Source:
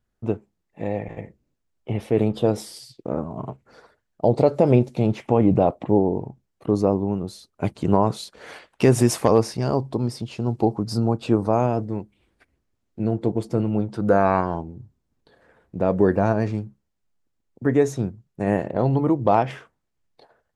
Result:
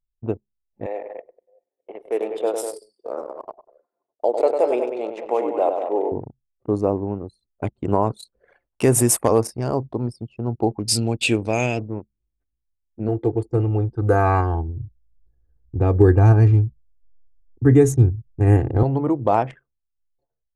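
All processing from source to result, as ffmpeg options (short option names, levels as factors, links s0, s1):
-filter_complex "[0:a]asettb=1/sr,asplit=3[s0][s1][s2];[s0]atrim=end=0.864[s3];[s1]atrim=start=0.86:end=6.12,asetpts=PTS-STARTPTS,afade=t=in:d=0.004:c=qsin,afade=t=out:st=5.256:d=0.004:c=qsin,highpass=f=400:w=0.5412,highpass=f=400:w=1.3066,aecho=1:1:100|195|233|611:0.473|0.376|0.133|0.15,atrim=end_sample=231966[s4];[s2]atrim=start=6.116[s5];[s3][s4]acrossfade=d=0.004:c1=hsin:c2=qsin[s6];[s6][s5]acrossfade=d=0.004:c1=qsin:c2=hsin,asettb=1/sr,asplit=3[s7][s8][s9];[s7]atrim=end=10.794[s10];[s8]atrim=start=10.79:end=11.8,asetpts=PTS-STARTPTS,afade=t=in:d=0.004:c=qsin,afade=t=out:st=1.006:d=0.004:c=qsin,lowpass=7900,highshelf=f=1700:t=q:w=3:g=13[s11];[s9]atrim=start=11.796[s12];[s10][s11]acrossfade=d=0.004:c1=hsin:c2=qsin[s13];[s13][s12]acrossfade=d=0.004:c1=qsin:c2=hsin,asettb=1/sr,asplit=3[s14][s15][s16];[s14]atrim=end=13.084[s17];[s15]atrim=start=13.08:end=18.83,asetpts=PTS-STARTPTS,afade=t=in:d=0.004:c=qsin,afade=t=out:st=5.746:d=0.004:c=qsin,asubboost=boost=8:cutoff=200,aecho=1:1:2.5:0.75,atrim=end_sample=253575[s18];[s16]atrim=start=18.826[s19];[s17][s18]acrossfade=d=0.004:c1=hsin:c2=qsin[s20];[s20][s19]acrossfade=d=0.004:c1=qsin:c2=hsin,equalizer=f=180:w=4.9:g=-11,anlmdn=15.8,highshelf=f=6700:t=q:w=1.5:g=10.5"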